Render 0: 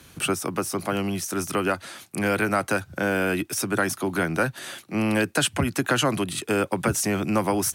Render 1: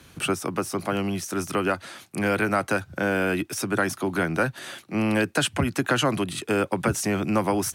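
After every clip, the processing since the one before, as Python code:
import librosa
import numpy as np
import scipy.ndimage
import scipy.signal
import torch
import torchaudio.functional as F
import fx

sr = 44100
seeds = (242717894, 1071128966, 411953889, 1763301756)

y = fx.high_shelf(x, sr, hz=6600.0, db=-6.0)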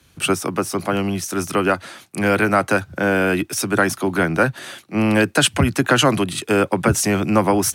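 y = fx.band_widen(x, sr, depth_pct=40)
y = y * librosa.db_to_amplitude(6.5)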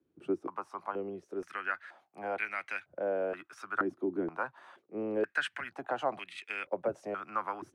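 y = fx.filter_held_bandpass(x, sr, hz=2.1, low_hz=340.0, high_hz=2200.0)
y = y * librosa.db_to_amplitude(-7.0)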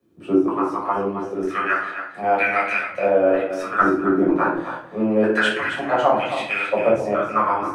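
y = x + 10.0 ** (-9.5 / 20.0) * np.pad(x, (int(269 * sr / 1000.0), 0))[:len(x)]
y = fx.room_shoebox(y, sr, seeds[0], volume_m3=560.0, walls='furnished', distance_m=6.0)
y = y * librosa.db_to_amplitude(6.5)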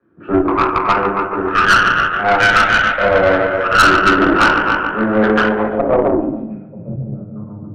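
y = fx.echo_bbd(x, sr, ms=144, stages=4096, feedback_pct=74, wet_db=-9.0)
y = fx.filter_sweep_lowpass(y, sr, from_hz=1500.0, to_hz=140.0, start_s=5.23, end_s=6.76, q=4.1)
y = fx.tube_stage(y, sr, drive_db=12.0, bias=0.65)
y = y * librosa.db_to_amplitude(6.5)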